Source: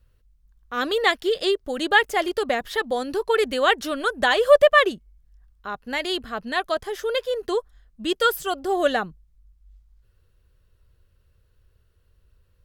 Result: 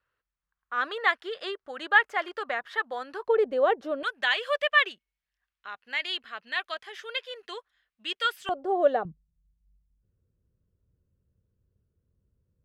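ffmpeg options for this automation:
-af "asetnsamples=n=441:p=0,asendcmd='3.28 bandpass f 550;4.03 bandpass f 2400;8.49 bandpass f 580;9.05 bandpass f 190',bandpass=f=1.4k:t=q:w=1.5:csg=0"

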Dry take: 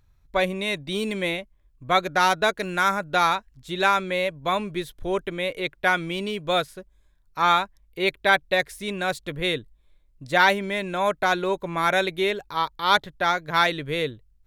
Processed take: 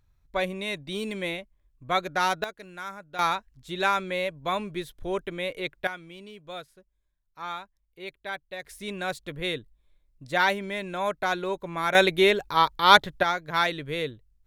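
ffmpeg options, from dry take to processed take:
-af "asetnsamples=n=441:p=0,asendcmd='2.44 volume volume -16dB;3.19 volume volume -4dB;5.87 volume volume -16dB;8.65 volume volume -5dB;11.95 volume volume 4dB;13.23 volume volume -4dB',volume=-5dB"

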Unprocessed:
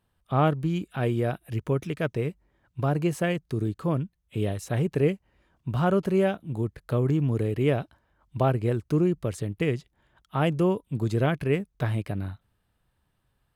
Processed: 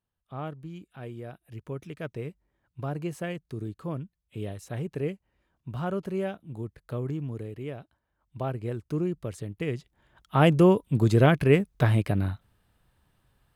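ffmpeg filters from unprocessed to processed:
-af "volume=11.5dB,afade=t=in:st=1.3:d=0.92:silence=0.473151,afade=t=out:st=7.02:d=0.72:silence=0.473151,afade=t=in:st=7.74:d=1.28:silence=0.375837,afade=t=in:st=9.65:d=0.81:silence=0.298538"

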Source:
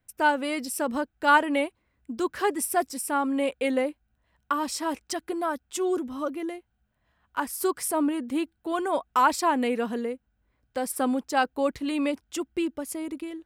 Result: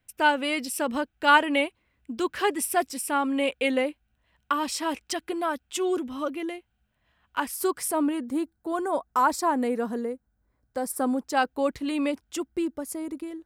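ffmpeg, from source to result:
-af "asetnsamples=n=441:p=0,asendcmd='7.54 equalizer g 0.5;8.24 equalizer g -11;11.25 equalizer g -0.5;12.45 equalizer g -7',equalizer=f=2.8k:t=o:w=0.98:g=7"

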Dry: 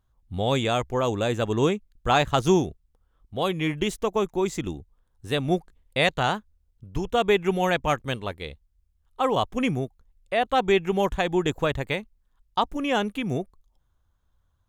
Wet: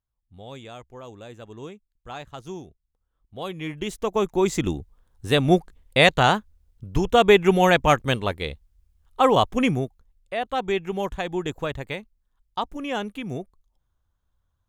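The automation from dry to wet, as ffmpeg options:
-af "volume=6dB,afade=t=in:st=2.55:d=1.26:silence=0.266073,afade=t=in:st=3.81:d=0.85:silence=0.281838,afade=t=out:st=9.24:d=1.11:silence=0.316228"

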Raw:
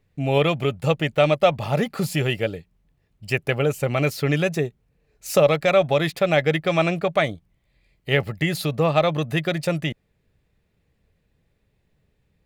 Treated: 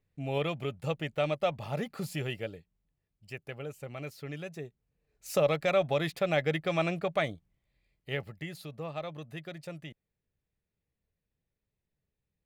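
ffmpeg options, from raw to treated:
-af "volume=-2dB,afade=t=out:st=2.23:d=1.1:silence=0.446684,afade=t=in:st=4.53:d=0.99:silence=0.316228,afade=t=out:st=7.32:d=1.25:silence=0.316228"

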